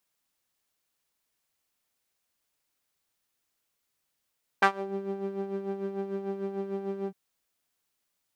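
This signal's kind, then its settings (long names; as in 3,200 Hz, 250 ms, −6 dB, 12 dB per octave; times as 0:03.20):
subtractive patch with tremolo G4, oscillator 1 saw, interval +12 semitones, detune 8 cents, sub −5 dB, filter bandpass, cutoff 140 Hz, Q 1.8, filter envelope 3.5 octaves, filter decay 0.27 s, filter sustain 35%, attack 9.7 ms, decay 0.09 s, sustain −17.5 dB, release 0.05 s, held 2.46 s, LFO 6.7 Hz, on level 8 dB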